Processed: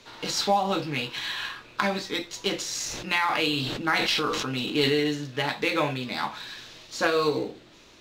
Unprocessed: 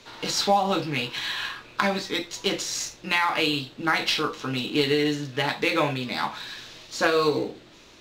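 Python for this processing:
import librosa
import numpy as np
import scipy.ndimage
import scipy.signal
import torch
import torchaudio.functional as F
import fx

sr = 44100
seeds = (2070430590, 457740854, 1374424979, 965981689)

y = fx.sustainer(x, sr, db_per_s=26.0, at=(2.74, 5.0))
y = y * 10.0 ** (-2.0 / 20.0)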